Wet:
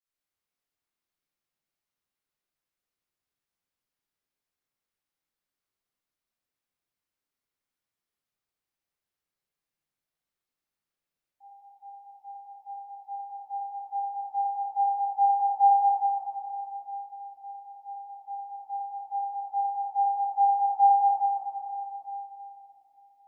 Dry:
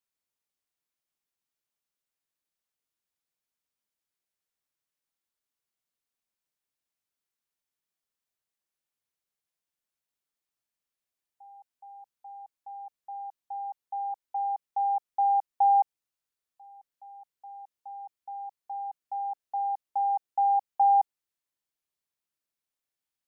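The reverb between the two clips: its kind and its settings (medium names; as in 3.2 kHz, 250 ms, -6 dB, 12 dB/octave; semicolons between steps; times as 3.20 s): simulated room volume 220 m³, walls hard, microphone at 2.2 m; trim -11 dB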